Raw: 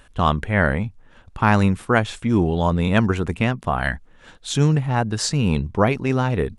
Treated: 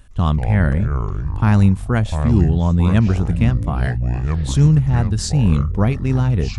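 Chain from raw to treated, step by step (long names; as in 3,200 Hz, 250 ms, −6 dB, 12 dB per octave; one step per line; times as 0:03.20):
bass and treble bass +14 dB, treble +6 dB
delay with pitch and tempo change per echo 111 ms, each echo −6 semitones, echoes 3, each echo −6 dB
level −6.5 dB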